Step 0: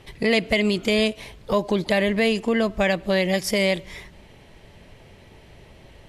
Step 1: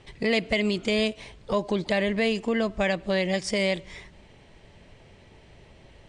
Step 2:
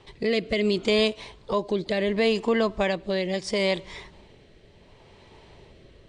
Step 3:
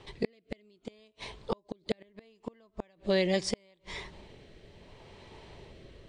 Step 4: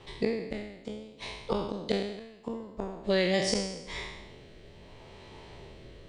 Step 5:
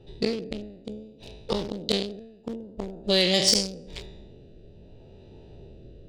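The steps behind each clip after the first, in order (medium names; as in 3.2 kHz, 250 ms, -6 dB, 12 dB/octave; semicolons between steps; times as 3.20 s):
steep low-pass 9.5 kHz 96 dB/octave; trim -4 dB
fifteen-band graphic EQ 400 Hz +5 dB, 1 kHz +8 dB, 4 kHz +6 dB; rotary cabinet horn 0.7 Hz
inverted gate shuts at -16 dBFS, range -38 dB
spectral sustain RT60 0.90 s
local Wiener filter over 41 samples; resonant high shelf 2.5 kHz +9.5 dB, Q 1.5; sine folder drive 4 dB, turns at -6 dBFS; trim -4.5 dB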